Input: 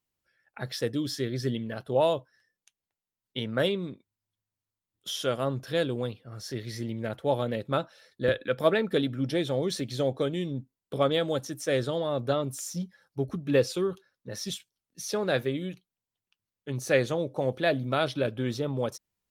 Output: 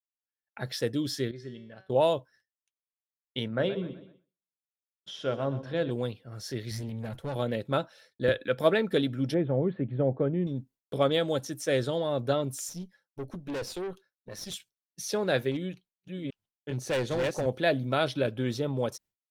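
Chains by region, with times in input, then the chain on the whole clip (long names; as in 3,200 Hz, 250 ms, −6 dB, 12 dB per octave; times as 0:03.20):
0:01.31–0:01.90: high-frequency loss of the air 72 metres + tuned comb filter 190 Hz, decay 0.65 s, mix 80%
0:03.48–0:05.91: head-to-tape spacing loss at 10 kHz 23 dB + mains-hum notches 50/100/150/200/250/300/350/400/450/500 Hz + feedback echo with a swinging delay time 125 ms, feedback 40%, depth 57 cents, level −13.5 dB
0:06.71–0:07.36: bass and treble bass +9 dB, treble +5 dB + downward compressor 2.5 to 1, threshold −26 dBFS + tube saturation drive 29 dB, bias 0.55
0:09.34–0:10.47: Gaussian smoothing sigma 4.8 samples + parametric band 150 Hz +4.5 dB 1.4 octaves
0:12.69–0:14.54: high-pass filter 130 Hz 6 dB per octave + tube saturation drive 31 dB, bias 0.7
0:15.51–0:17.46: delay that plays each chunk backwards 398 ms, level −3 dB + high-shelf EQ 7,100 Hz −8 dB + gain into a clipping stage and back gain 25 dB
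whole clip: downward expander −51 dBFS; notch filter 1,200 Hz, Q 13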